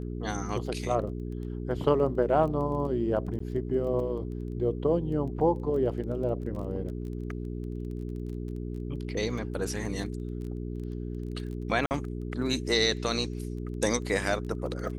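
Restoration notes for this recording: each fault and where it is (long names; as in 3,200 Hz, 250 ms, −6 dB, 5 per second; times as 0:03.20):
surface crackle 14 per second −38 dBFS
mains hum 60 Hz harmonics 7 −35 dBFS
0:03.39–0:03.40: drop-out
0:06.56: drop-out 3.2 ms
0:11.86–0:11.91: drop-out 49 ms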